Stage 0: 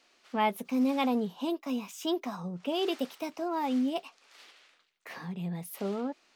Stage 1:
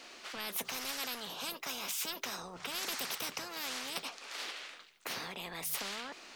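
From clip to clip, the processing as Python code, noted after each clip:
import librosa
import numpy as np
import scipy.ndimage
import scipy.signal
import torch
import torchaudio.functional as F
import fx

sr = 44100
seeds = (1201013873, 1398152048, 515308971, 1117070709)

y = fx.hum_notches(x, sr, base_hz=50, count=3)
y = fx.spectral_comp(y, sr, ratio=10.0)
y = y * 10.0 ** (-2.5 / 20.0)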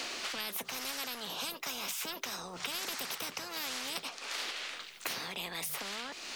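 y = fx.band_squash(x, sr, depth_pct=100)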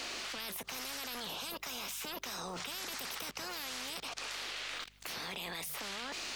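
y = fx.level_steps(x, sr, step_db=24)
y = fx.add_hum(y, sr, base_hz=50, snr_db=24)
y = fx.record_warp(y, sr, rpm=78.0, depth_cents=100.0)
y = y * 10.0 ** (6.5 / 20.0)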